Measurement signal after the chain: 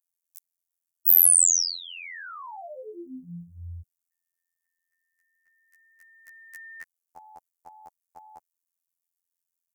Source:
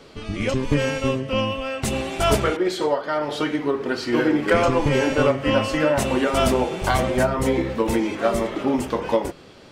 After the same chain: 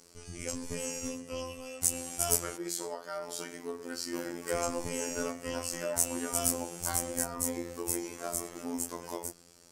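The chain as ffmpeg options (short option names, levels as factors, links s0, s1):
-af "afftfilt=real='hypot(re,im)*cos(PI*b)':imag='0':win_size=2048:overlap=0.75,aexciter=amount=13.6:drive=2.7:freq=5300,volume=0.224"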